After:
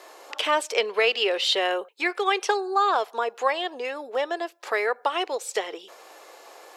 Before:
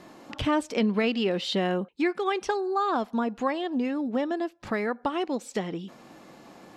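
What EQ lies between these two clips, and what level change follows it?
treble shelf 6.3 kHz +9 dB; dynamic bell 2.7 kHz, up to +4 dB, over -41 dBFS, Q 1.2; Chebyshev high-pass 420 Hz, order 4; +4.5 dB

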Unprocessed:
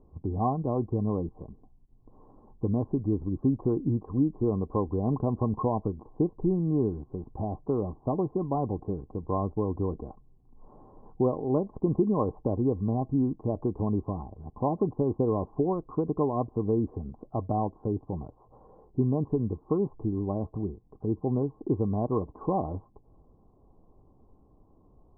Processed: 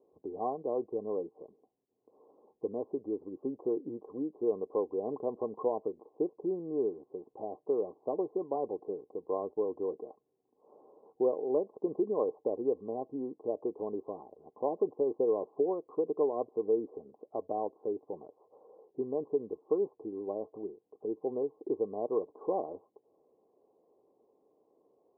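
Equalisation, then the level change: ladder band-pass 530 Hz, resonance 50%; +6.0 dB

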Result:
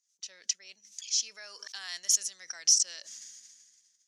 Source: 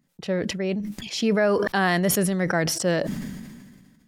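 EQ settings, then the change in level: band-pass filter 6.2 kHz, Q 5.9; distance through air 64 m; tilt EQ +4 dB/octave; +4.5 dB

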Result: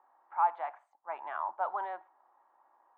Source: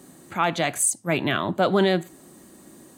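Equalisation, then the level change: ladder high-pass 820 Hz, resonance 75%; four-pole ladder low-pass 1.7 kHz, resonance 20%; +2.0 dB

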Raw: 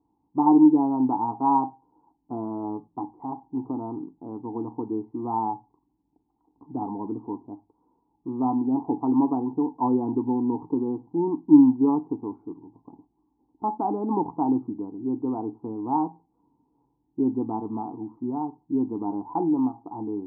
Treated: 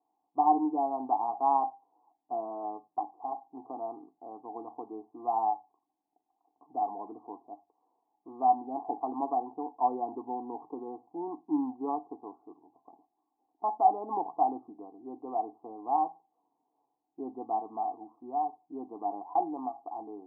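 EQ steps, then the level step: vowel filter a; distance through air 350 m; peaking EQ 650 Hz +9.5 dB 3 oct; 0.0 dB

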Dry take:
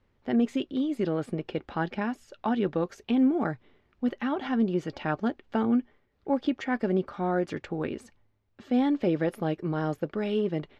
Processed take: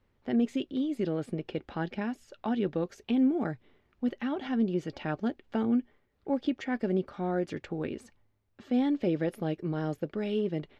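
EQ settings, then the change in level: dynamic bell 1.1 kHz, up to -6 dB, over -45 dBFS, Q 1.2; -2.0 dB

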